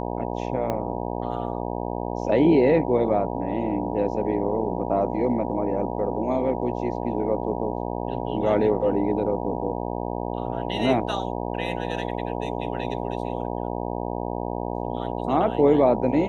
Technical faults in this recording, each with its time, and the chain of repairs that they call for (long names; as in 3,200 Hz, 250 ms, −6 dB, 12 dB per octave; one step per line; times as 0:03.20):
mains buzz 60 Hz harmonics 16 −29 dBFS
0:00.70: click −14 dBFS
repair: click removal
hum removal 60 Hz, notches 16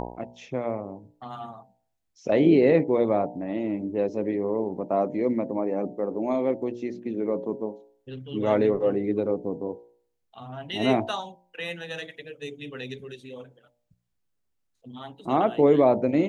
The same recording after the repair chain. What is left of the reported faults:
0:00.70: click